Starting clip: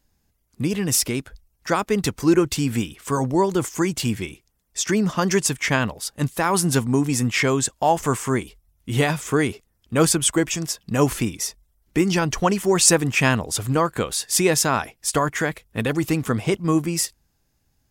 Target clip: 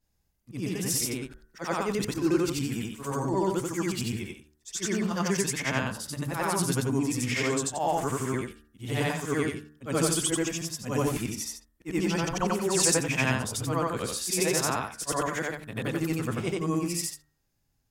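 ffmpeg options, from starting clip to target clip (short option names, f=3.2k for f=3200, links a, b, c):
-af "afftfilt=real='re':imag='-im':win_size=8192:overlap=0.75,bandreject=f=74.83:t=h:w=4,bandreject=f=149.66:t=h:w=4,bandreject=f=224.49:t=h:w=4,bandreject=f=299.32:t=h:w=4,bandreject=f=374.15:t=h:w=4,bandreject=f=448.98:t=h:w=4,bandreject=f=523.81:t=h:w=4,bandreject=f=598.64:t=h:w=4,bandreject=f=673.47:t=h:w=4,bandreject=f=748.3:t=h:w=4,bandreject=f=823.13:t=h:w=4,bandreject=f=897.96:t=h:w=4,bandreject=f=972.79:t=h:w=4,bandreject=f=1.04762k:t=h:w=4,bandreject=f=1.12245k:t=h:w=4,bandreject=f=1.19728k:t=h:w=4,bandreject=f=1.27211k:t=h:w=4,bandreject=f=1.34694k:t=h:w=4,bandreject=f=1.42177k:t=h:w=4,bandreject=f=1.4966k:t=h:w=4,bandreject=f=1.57143k:t=h:w=4,bandreject=f=1.64626k:t=h:w=4,bandreject=f=1.72109k:t=h:w=4,bandreject=f=1.79592k:t=h:w=4,bandreject=f=1.87075k:t=h:w=4,volume=-2.5dB"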